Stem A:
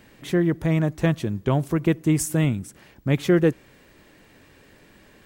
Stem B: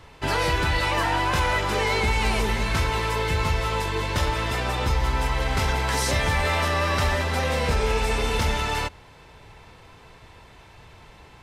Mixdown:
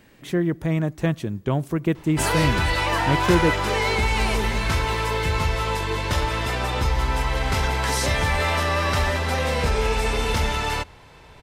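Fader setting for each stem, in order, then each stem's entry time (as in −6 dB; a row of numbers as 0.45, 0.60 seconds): −1.5, +1.0 decibels; 0.00, 1.95 seconds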